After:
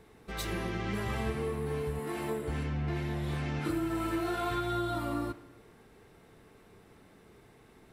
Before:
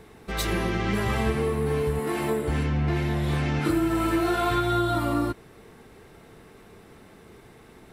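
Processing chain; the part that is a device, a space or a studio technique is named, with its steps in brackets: saturated reverb return (on a send at -9.5 dB: reverb RT60 0.95 s, pre-delay 25 ms + soft clip -32 dBFS, distortion -6 dB); on the sum: gain -8.5 dB

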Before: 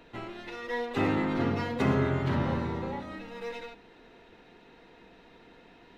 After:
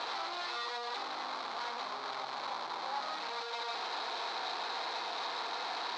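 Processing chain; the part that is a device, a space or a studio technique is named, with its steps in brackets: 1.86–2.31 resonant low shelf 110 Hz -11.5 dB, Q 1.5; home computer beeper (infinite clipping; speaker cabinet 780–4800 Hz, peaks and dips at 790 Hz +8 dB, 1100 Hz +6 dB, 1900 Hz -5 dB, 2800 Hz -8 dB, 4100 Hz +8 dB); gain -4 dB

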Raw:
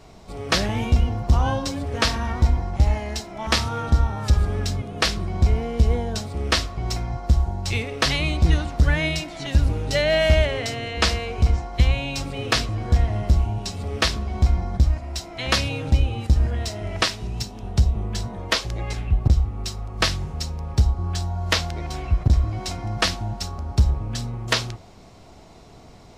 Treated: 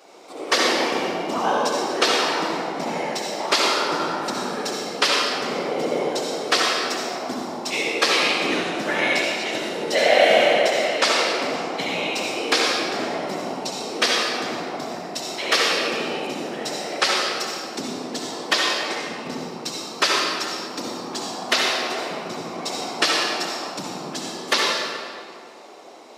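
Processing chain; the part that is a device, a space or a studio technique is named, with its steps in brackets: whispering ghost (whisperiser; HPF 320 Hz 24 dB/oct; reverb RT60 2.2 s, pre-delay 58 ms, DRR -3 dB); gain +1 dB

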